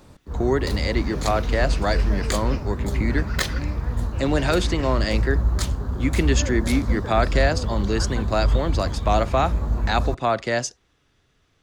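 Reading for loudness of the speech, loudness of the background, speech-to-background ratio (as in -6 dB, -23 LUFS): -25.0 LUFS, -25.5 LUFS, 0.5 dB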